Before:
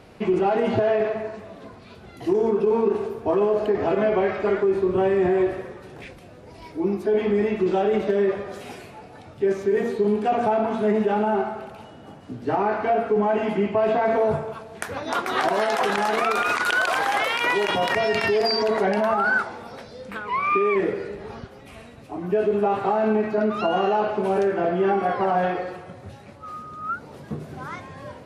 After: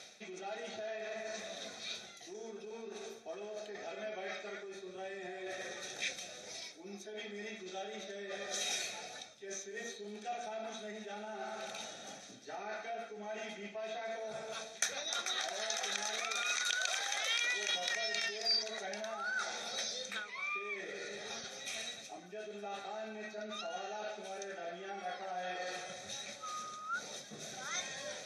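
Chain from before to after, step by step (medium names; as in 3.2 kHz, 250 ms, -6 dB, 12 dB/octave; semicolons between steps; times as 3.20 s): reverse; compression 8:1, threshold -35 dBFS, peak gain reduction 18.5 dB; reverse; band-pass filter 6.2 kHz, Q 3.6; reverberation RT60 0.30 s, pre-delay 3 ms, DRR 14.5 dB; trim +17.5 dB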